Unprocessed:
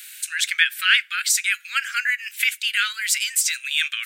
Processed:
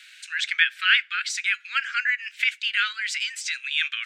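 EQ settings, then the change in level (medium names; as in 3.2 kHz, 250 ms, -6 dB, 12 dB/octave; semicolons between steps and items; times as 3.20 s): distance through air 150 m; 0.0 dB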